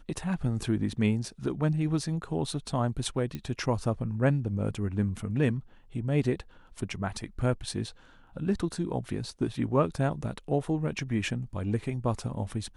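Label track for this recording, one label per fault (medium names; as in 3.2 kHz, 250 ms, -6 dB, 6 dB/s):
3.350000	3.350000	pop -22 dBFS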